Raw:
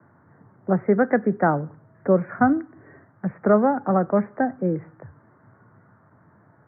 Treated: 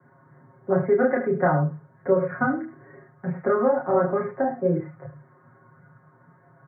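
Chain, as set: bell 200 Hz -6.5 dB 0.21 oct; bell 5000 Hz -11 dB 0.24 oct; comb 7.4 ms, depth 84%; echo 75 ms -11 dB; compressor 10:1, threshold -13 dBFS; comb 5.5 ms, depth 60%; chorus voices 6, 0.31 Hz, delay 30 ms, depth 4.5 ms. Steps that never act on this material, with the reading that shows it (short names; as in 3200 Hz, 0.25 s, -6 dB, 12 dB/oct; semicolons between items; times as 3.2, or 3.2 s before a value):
bell 5000 Hz: input band ends at 1900 Hz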